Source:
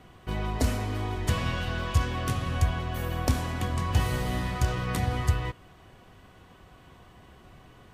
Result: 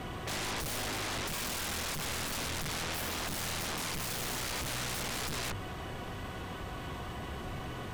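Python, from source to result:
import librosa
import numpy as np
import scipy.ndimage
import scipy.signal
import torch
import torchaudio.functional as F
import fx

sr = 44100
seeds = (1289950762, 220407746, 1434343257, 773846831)

y = fx.hum_notches(x, sr, base_hz=50, count=4)
y = fx.tube_stage(y, sr, drive_db=30.0, bias=0.6)
y = fx.fold_sine(y, sr, drive_db=20, ceiling_db=-25.5)
y = y * librosa.db_to_amplitude(-7.5)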